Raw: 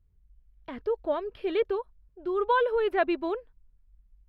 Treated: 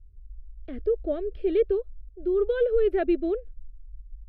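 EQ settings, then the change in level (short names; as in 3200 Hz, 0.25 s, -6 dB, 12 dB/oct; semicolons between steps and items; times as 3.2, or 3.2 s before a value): tilt -3.5 dB/oct; fixed phaser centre 400 Hz, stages 4; 0.0 dB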